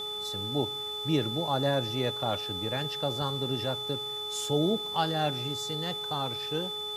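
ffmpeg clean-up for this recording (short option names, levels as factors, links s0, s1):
-af "bandreject=f=419.9:t=h:w=4,bandreject=f=839.8:t=h:w=4,bandreject=f=1259.7:t=h:w=4,bandreject=f=3500:w=30,afwtdn=0.0022"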